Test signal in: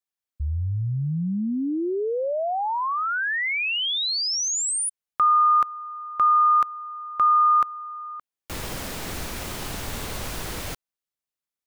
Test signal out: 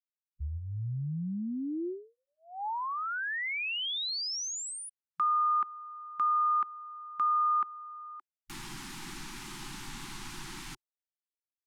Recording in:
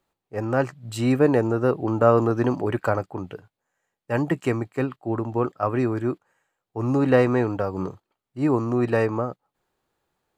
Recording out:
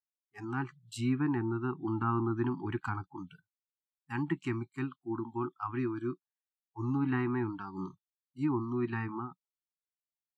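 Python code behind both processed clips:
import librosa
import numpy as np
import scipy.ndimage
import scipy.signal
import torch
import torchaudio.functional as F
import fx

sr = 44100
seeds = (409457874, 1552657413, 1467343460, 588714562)

y = fx.env_lowpass_down(x, sr, base_hz=2100.0, full_db=-16.0)
y = fx.noise_reduce_blind(y, sr, reduce_db=29)
y = scipy.signal.sosfilt(scipy.signal.ellip(3, 1.0, 50, [360.0, 830.0], 'bandstop', fs=sr, output='sos'), y)
y = y * librosa.db_to_amplitude(-8.0)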